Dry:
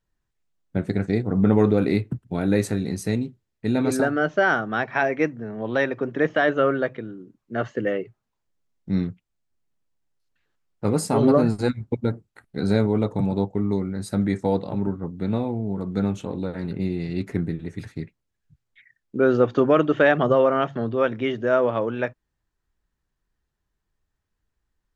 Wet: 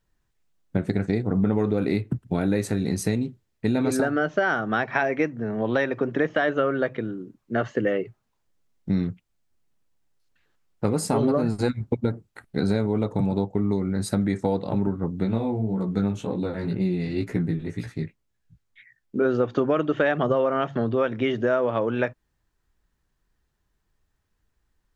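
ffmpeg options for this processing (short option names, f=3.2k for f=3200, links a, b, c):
-filter_complex "[0:a]asplit=3[a][b][c];[a]afade=t=out:st=15.24:d=0.02[d];[b]flanger=delay=16:depth=3.9:speed=1.9,afade=t=in:st=15.24:d=0.02,afade=t=out:st=19.24:d=0.02[e];[c]afade=t=in:st=19.24:d=0.02[f];[d][e][f]amix=inputs=3:normalize=0,acompressor=threshold=-25dB:ratio=4,volume=5dB"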